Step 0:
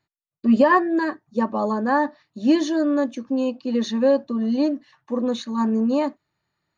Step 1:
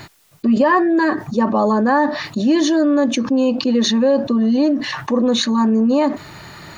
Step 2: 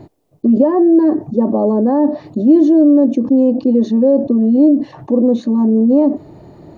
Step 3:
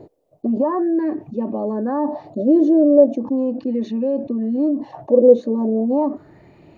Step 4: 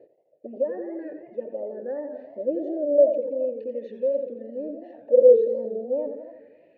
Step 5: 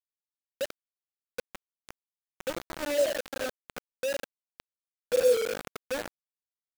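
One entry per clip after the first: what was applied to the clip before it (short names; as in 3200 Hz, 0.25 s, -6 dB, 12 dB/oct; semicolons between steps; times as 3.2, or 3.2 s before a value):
fast leveller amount 70%
EQ curve 180 Hz 0 dB, 300 Hz +7 dB, 690 Hz +1 dB, 1400 Hz -21 dB
LFO bell 0.37 Hz 480–2600 Hz +17 dB; gain -9.5 dB
vowel filter e; warbling echo 84 ms, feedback 64%, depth 170 cents, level -9.5 dB
bit-crush 4-bit; gain -9 dB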